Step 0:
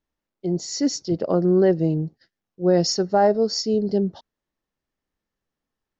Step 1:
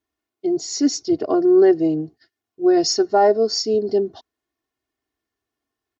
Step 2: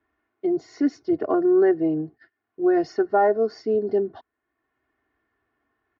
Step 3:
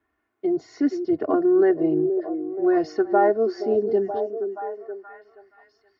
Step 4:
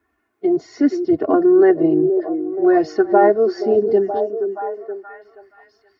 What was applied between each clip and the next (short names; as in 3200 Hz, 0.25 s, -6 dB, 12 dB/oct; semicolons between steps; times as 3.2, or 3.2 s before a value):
HPF 89 Hz 12 dB/oct; comb 2.8 ms, depth 96%
synth low-pass 1700 Hz, resonance Q 1.9; three-band squash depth 40%; gain -4 dB
delay with a stepping band-pass 0.475 s, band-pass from 360 Hz, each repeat 0.7 oct, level -6 dB
bin magnitudes rounded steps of 15 dB; gain +6 dB